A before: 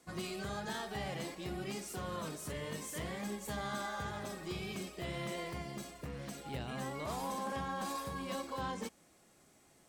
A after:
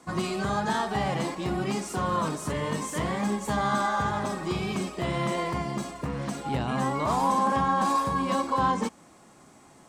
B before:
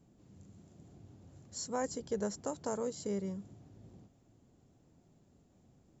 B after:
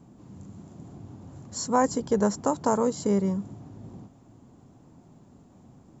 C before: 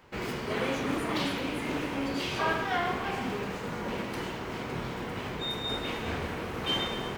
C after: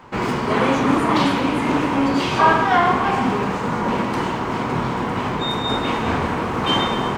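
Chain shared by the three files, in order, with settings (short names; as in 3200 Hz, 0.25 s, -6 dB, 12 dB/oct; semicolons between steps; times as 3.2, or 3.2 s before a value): ten-band EQ 125 Hz +4 dB, 250 Hz +6 dB, 1000 Hz +10 dB, 8000 Hz +5 dB, 16000 Hz -11 dB; gain +7.5 dB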